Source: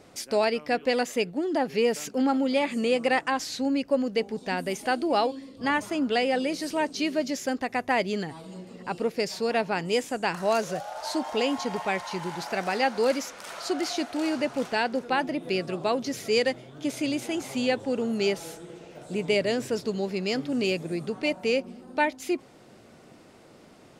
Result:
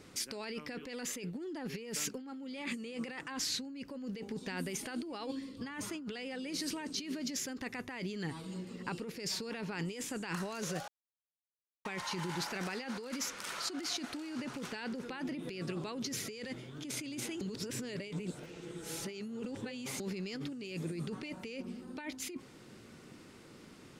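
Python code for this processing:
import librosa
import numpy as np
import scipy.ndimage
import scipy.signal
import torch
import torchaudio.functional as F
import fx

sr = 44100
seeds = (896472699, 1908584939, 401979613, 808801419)

y = fx.edit(x, sr, fx.silence(start_s=10.88, length_s=0.97),
    fx.reverse_span(start_s=17.41, length_s=2.59), tone=tone)
y = fx.peak_eq(y, sr, hz=670.0, db=-12.0, octaves=0.74)
y = fx.over_compress(y, sr, threshold_db=-35.0, ratio=-1.0)
y = y * 10.0 ** (-5.0 / 20.0)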